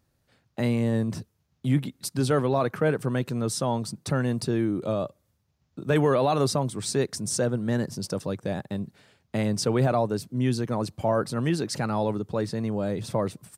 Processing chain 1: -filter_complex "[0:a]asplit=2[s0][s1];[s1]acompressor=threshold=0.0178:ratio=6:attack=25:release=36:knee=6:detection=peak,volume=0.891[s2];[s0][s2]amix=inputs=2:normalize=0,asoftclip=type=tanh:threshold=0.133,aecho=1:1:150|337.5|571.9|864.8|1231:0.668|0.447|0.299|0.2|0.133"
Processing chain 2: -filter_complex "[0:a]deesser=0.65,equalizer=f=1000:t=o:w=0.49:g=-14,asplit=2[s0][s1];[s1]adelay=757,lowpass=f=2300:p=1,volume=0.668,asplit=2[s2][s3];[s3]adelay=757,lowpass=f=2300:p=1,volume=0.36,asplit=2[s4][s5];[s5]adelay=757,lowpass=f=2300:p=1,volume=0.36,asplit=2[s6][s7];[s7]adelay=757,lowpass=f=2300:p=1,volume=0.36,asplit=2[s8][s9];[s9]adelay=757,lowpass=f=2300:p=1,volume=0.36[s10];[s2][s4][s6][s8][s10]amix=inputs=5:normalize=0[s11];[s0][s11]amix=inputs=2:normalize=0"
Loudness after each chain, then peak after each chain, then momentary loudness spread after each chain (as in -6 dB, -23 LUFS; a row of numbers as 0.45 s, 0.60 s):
-24.0 LUFS, -26.5 LUFS; -11.5 dBFS, -10.5 dBFS; 6 LU, 6 LU